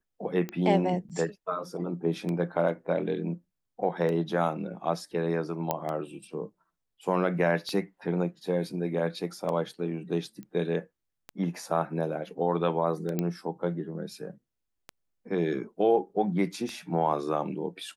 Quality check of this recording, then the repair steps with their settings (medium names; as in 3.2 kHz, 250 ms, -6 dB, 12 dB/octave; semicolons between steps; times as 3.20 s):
tick 33 1/3 rpm -21 dBFS
1.09–1.10 s: dropout 7.7 ms
5.71 s: pop -13 dBFS
10.43 s: pop -31 dBFS
13.19 s: pop -15 dBFS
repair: de-click; interpolate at 1.09 s, 7.7 ms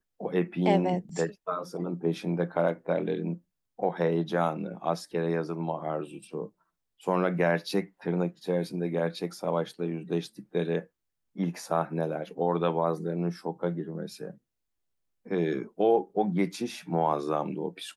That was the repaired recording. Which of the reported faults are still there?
13.19 s: pop